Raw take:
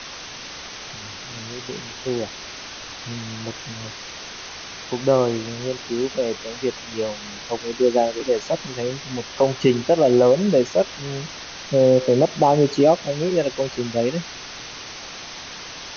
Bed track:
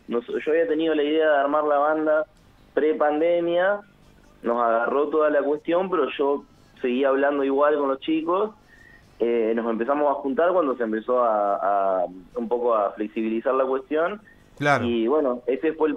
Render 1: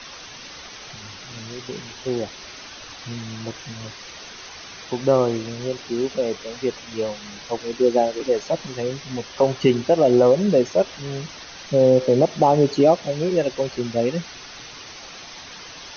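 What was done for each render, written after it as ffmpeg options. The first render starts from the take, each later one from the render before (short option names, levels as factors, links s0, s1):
-af "afftdn=nr=6:nf=-36"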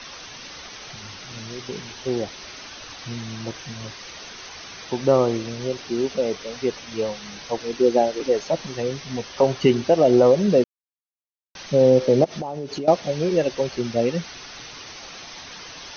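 -filter_complex "[0:a]asettb=1/sr,asplit=3[s0][s1][s2];[s0]atrim=end=12.244[s3];[s1]atrim=start=12.24:end=12.88,asetpts=PTS-STARTPTS,afade=t=in:d=0.004:c=qsin,afade=t=out:st=0.636:d=0.004:c=qsin,acompressor=threshold=0.0501:ratio=8:attack=3.2:release=140:knee=1:detection=peak[s4];[s2]atrim=start=12.876[s5];[s3][s4]acrossfade=d=0.004:c1=hsin:c2=qsin[s6];[s6][s5]acrossfade=d=0.004:c1=qsin:c2=hsin,asplit=3[s7][s8][s9];[s7]atrim=end=10.64,asetpts=PTS-STARTPTS,afade=t=out:st=10.636:d=0.004:c=hsin[s10];[s8]atrim=start=10.64:end=11.55,asetpts=PTS-STARTPTS,volume=0[s11];[s9]atrim=start=11.55,asetpts=PTS-STARTPTS,afade=t=in:d=0.004:c=hsin[s12];[s10][s11][s12]concat=n=3:v=0:a=1"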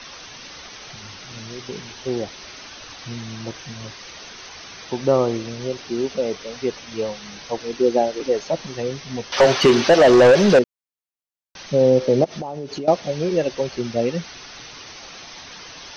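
-filter_complex "[0:a]asettb=1/sr,asplit=3[s0][s1][s2];[s0]atrim=end=9.324[s3];[s1]atrim=start=9.32:end=10.59,asetpts=PTS-STARTPTS,afade=t=in:d=0.004:c=qsin,afade=t=out:st=1.266:d=0.004:c=qsin,asplit=2[s4][s5];[s5]highpass=f=720:p=1,volume=12.6,asoftclip=type=tanh:threshold=0.596[s6];[s4][s6]amix=inputs=2:normalize=0,lowpass=f=4900:p=1,volume=0.501[s7];[s2]atrim=start=10.586[s8];[s3][s7]acrossfade=d=0.004:c1=hsin:c2=qsin[s9];[s9][s8]acrossfade=d=0.004:c1=qsin:c2=hsin"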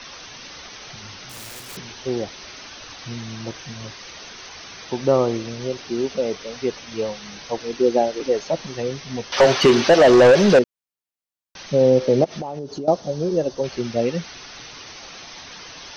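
-filter_complex "[0:a]asettb=1/sr,asplit=3[s0][s1][s2];[s0]atrim=end=1.294[s3];[s1]atrim=start=1.29:end=1.77,asetpts=PTS-STARTPTS,afade=t=in:d=0.004:c=qsin,afade=t=out:st=0.476:d=0.004:c=qsin,aeval=exprs='(mod(37.6*val(0)+1,2)-1)/37.6':c=same[s4];[s2]atrim=start=1.766[s5];[s3][s4]acrossfade=d=0.004:c1=hsin:c2=qsin[s6];[s6][s5]acrossfade=d=0.004:c1=qsin:c2=hsin,asettb=1/sr,asplit=3[s7][s8][s9];[s7]atrim=end=12.594[s10];[s8]atrim=start=12.59:end=13.64,asetpts=PTS-STARTPTS,afade=t=in:d=0.004:c=qsin,afade=t=out:st=1.046:d=0.004:c=qsin,equalizer=f=2300:w=1.1:g=-14[s11];[s9]atrim=start=13.636[s12];[s10][s11]acrossfade=d=0.004:c1=hsin:c2=qsin[s13];[s13][s12]acrossfade=d=0.004:c1=qsin:c2=hsin"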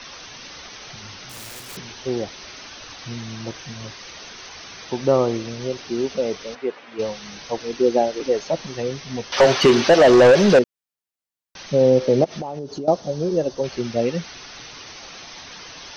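-filter_complex "[0:a]asplit=3[s0][s1][s2];[s0]afade=t=out:st=6.54:d=0.02[s3];[s1]highpass=320,lowpass=2200,afade=t=in:st=6.54:d=0.02,afade=t=out:st=6.98:d=0.02[s4];[s2]afade=t=in:st=6.98:d=0.02[s5];[s3][s4][s5]amix=inputs=3:normalize=0"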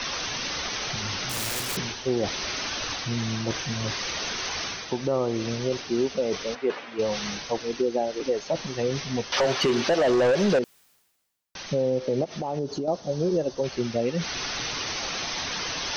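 -af "areverse,acompressor=mode=upward:threshold=0.0891:ratio=2.5,areverse,alimiter=limit=0.168:level=0:latency=1:release=363"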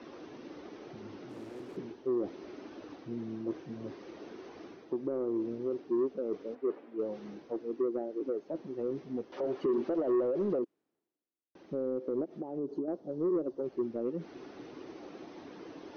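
-af "bandpass=f=330:t=q:w=3.3:csg=0,asoftclip=type=tanh:threshold=0.0708"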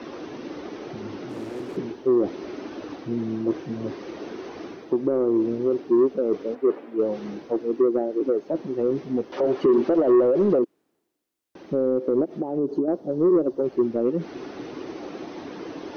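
-af "volume=3.76"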